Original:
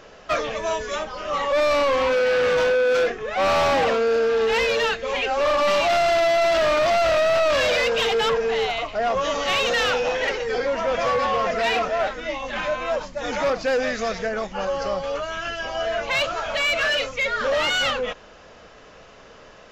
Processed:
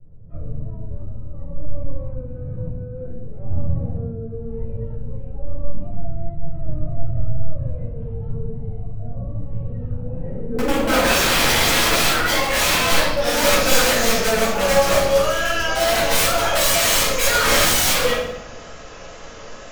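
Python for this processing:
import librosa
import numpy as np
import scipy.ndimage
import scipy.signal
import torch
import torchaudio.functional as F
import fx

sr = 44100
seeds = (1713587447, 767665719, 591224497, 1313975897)

y = fx.filter_sweep_lowpass(x, sr, from_hz=120.0, to_hz=7100.0, start_s=9.9, end_s=13.5, q=3.7)
y = (np.mod(10.0 ** (19.0 / 20.0) * y + 1.0, 2.0) - 1.0) / 10.0 ** (19.0 / 20.0)
y = fx.vibrato(y, sr, rate_hz=2.1, depth_cents=29.0)
y = fx.room_shoebox(y, sr, seeds[0], volume_m3=290.0, walls='mixed', distance_m=4.8)
y = y * librosa.db_to_amplitude(-5.5)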